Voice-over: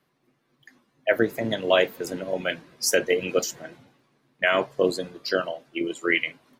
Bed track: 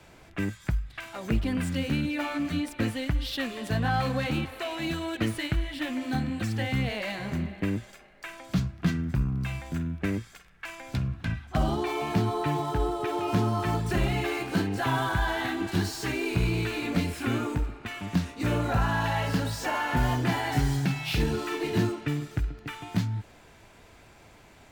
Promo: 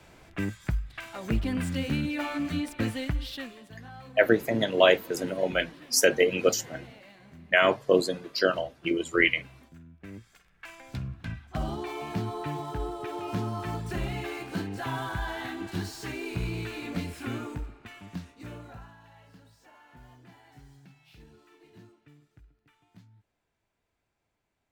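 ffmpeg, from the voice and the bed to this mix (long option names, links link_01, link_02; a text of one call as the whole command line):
ffmpeg -i stem1.wav -i stem2.wav -filter_complex "[0:a]adelay=3100,volume=0.5dB[link_01];[1:a]volume=12.5dB,afade=type=out:start_time=3.02:duration=0.68:silence=0.11885,afade=type=in:start_time=9.99:duration=0.58:silence=0.211349,afade=type=out:start_time=17.29:duration=1.67:silence=0.0841395[link_02];[link_01][link_02]amix=inputs=2:normalize=0" out.wav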